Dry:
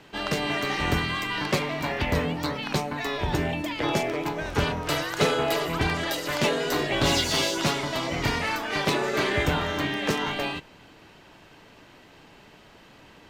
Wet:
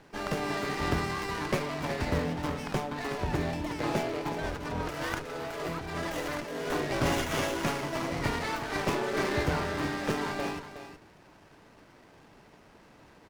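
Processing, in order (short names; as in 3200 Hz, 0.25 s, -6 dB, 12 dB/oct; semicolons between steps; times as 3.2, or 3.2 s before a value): 4.43–6.68 negative-ratio compressor -31 dBFS, ratio -1; echo 0.367 s -11 dB; running maximum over 9 samples; gain -4 dB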